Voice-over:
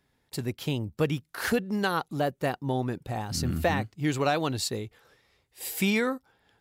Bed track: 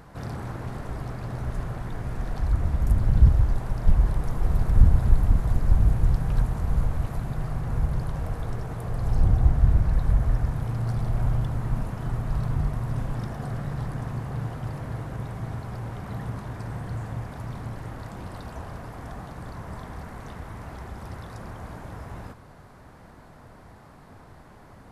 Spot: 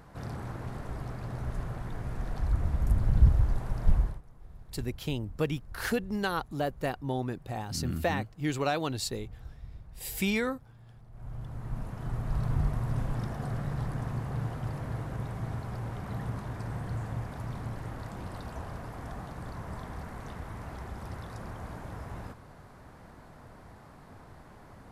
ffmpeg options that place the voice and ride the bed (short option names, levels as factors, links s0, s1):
-filter_complex "[0:a]adelay=4400,volume=0.668[s0];[1:a]volume=9.44,afade=t=out:st=3.95:d=0.26:silence=0.0794328,afade=t=in:st=11.11:d=1.47:silence=0.0630957[s1];[s0][s1]amix=inputs=2:normalize=0"